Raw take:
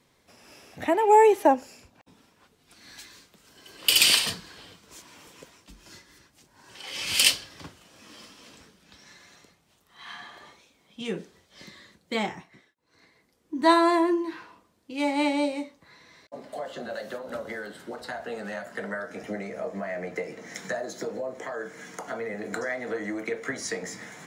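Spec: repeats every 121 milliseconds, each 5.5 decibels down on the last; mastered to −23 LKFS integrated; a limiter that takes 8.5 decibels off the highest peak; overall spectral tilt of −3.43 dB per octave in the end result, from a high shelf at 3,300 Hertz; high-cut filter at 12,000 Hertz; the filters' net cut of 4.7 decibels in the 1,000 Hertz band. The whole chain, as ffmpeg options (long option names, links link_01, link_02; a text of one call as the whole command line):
ffmpeg -i in.wav -af "lowpass=12000,equalizer=frequency=1000:width_type=o:gain=-5,highshelf=frequency=3300:gain=-7.5,alimiter=limit=-16dB:level=0:latency=1,aecho=1:1:121|242|363|484|605|726|847:0.531|0.281|0.149|0.079|0.0419|0.0222|0.0118,volume=7dB" out.wav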